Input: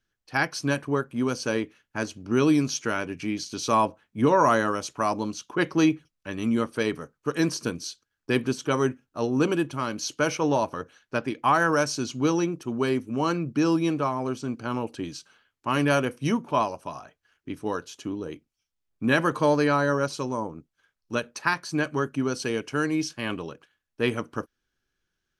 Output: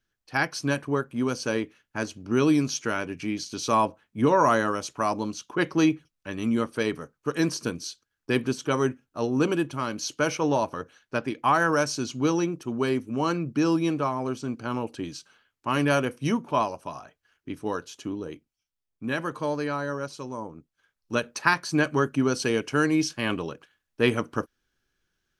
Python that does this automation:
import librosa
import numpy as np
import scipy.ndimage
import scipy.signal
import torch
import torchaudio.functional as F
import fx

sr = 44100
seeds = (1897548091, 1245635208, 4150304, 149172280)

y = fx.gain(x, sr, db=fx.line((18.17, -0.5), (19.05, -7.0), (20.2, -7.0), (21.34, 3.0)))